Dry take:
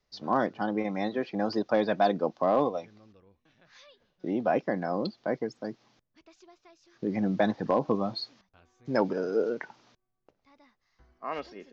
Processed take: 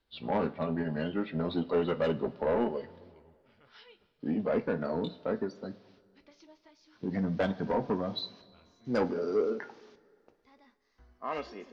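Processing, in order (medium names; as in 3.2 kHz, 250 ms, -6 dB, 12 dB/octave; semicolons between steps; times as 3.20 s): pitch bend over the whole clip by -4.5 st ending unshifted; saturation -22 dBFS, distortion -13 dB; two-slope reverb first 0.23 s, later 2.1 s, from -19 dB, DRR 8.5 dB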